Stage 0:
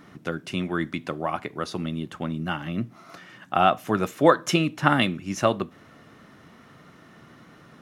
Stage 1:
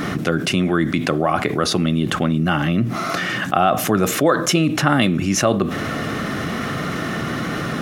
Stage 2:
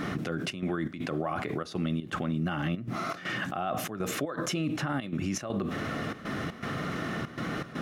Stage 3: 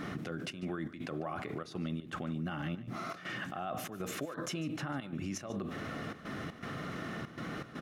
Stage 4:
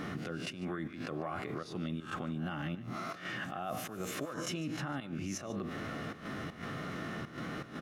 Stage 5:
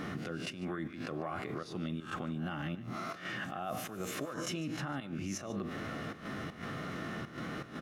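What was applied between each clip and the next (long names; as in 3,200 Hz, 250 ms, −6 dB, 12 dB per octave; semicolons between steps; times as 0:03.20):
notch filter 940 Hz, Q 6.4; dynamic equaliser 2,600 Hz, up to −4 dB, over −36 dBFS, Q 0.77; envelope flattener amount 70%
high-shelf EQ 6,100 Hz −6.5 dB; gate pattern "xxxx.xx.x" 120 BPM −12 dB; brickwall limiter −12.5 dBFS, peak gain reduction 10.5 dB; level −9 dB
single-tap delay 147 ms −17.5 dB; level −7 dB
peak hold with a rise ahead of every peak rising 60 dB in 0.31 s; level −1 dB
convolution reverb, pre-delay 7 ms, DRR 19.5 dB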